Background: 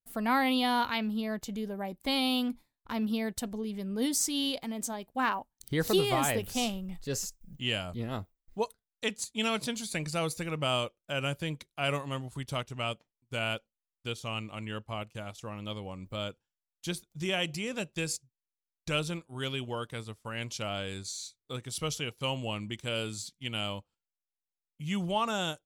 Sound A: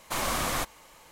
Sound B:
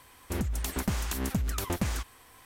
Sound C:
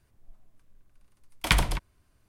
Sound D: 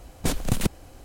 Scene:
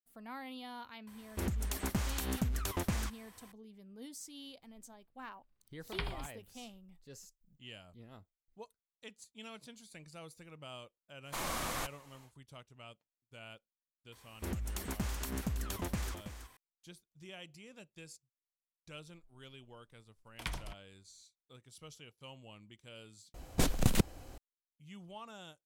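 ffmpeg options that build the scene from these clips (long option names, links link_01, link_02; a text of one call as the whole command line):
ffmpeg -i bed.wav -i cue0.wav -i cue1.wav -i cue2.wav -i cue3.wav -filter_complex "[2:a]asplit=2[link_01][link_02];[3:a]asplit=2[link_03][link_04];[0:a]volume=-19dB[link_05];[link_03]aresample=11025,aresample=44100[link_06];[link_02]aecho=1:1:326:0.316[link_07];[4:a]equalizer=frequency=9500:width=5.5:gain=-4[link_08];[link_05]asplit=2[link_09][link_10];[link_09]atrim=end=23.344[link_11];[link_08]atrim=end=1.04,asetpts=PTS-STARTPTS,volume=-4dB[link_12];[link_10]atrim=start=24.376[link_13];[link_01]atrim=end=2.45,asetpts=PTS-STARTPTS,volume=-4.5dB,afade=type=in:duration=0.004:curve=hsin,afade=type=out:start_time=2.446:duration=0.004:curve=hsin,adelay=1070[link_14];[link_06]atrim=end=2.28,asetpts=PTS-STARTPTS,volume=-16.5dB,afade=type=in:duration=0.004:curve=hsin,afade=type=out:start_time=2.276:duration=0.004:curve=hsin,adelay=4480[link_15];[1:a]atrim=end=1.11,asetpts=PTS-STARTPTS,volume=-8.5dB,afade=type=in:duration=0.1,afade=type=out:start_time=1.01:duration=0.1,adelay=494802S[link_16];[link_07]atrim=end=2.45,asetpts=PTS-STARTPTS,volume=-7.5dB,afade=type=in:duration=0.004:curve=hsin,afade=type=out:start_time=2.446:duration=0.004:curve=hsin,adelay=622692S[link_17];[link_04]atrim=end=2.28,asetpts=PTS-STARTPTS,volume=-17.5dB,afade=type=in:duration=0.004:curve=hsin,afade=type=out:start_time=2.276:duration=0.004:curve=hsin,adelay=18950[link_18];[link_11][link_12]acrossfade=duration=0.004:curve1=hsin:curve2=hsin[link_19];[link_19][link_13]acrossfade=duration=0.004:curve1=hsin:curve2=hsin[link_20];[link_20][link_14][link_15][link_16][link_17][link_18]amix=inputs=6:normalize=0" out.wav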